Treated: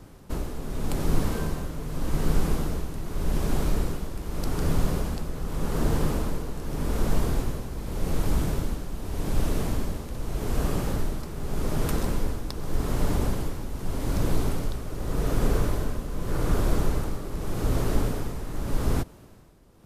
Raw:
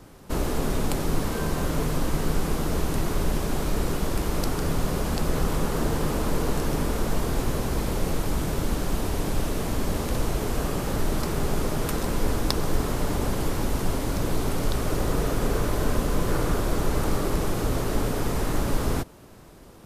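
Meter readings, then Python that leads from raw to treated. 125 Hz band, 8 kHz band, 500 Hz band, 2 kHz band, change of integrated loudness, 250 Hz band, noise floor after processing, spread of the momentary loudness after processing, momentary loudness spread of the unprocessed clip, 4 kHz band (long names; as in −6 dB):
−1.0 dB, −5.5 dB, −4.5 dB, −5.5 dB, −2.5 dB, −3.0 dB, −47 dBFS, 8 LU, 2 LU, −6.0 dB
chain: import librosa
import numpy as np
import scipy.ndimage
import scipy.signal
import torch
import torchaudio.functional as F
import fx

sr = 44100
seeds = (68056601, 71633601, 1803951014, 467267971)

y = fx.low_shelf(x, sr, hz=220.0, db=6.0)
y = y * (1.0 - 0.68 / 2.0 + 0.68 / 2.0 * np.cos(2.0 * np.pi * 0.84 * (np.arange(len(y)) / sr)))
y = y * librosa.db_to_amplitude(-2.5)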